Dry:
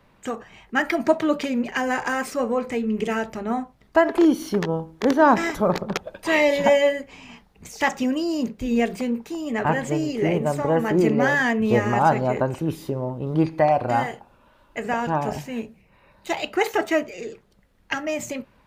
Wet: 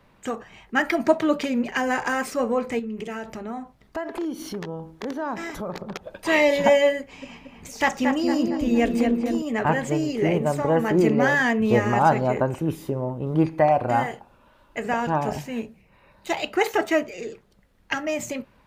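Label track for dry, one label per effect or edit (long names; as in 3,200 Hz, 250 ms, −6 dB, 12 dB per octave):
2.790000	6.130000	downward compressor 2.5 to 1, threshold −32 dBFS
6.990000	9.420000	feedback echo with a low-pass in the loop 229 ms, feedback 57%, level −3.5 dB
12.340000	14.110000	parametric band 4,400 Hz −5.5 dB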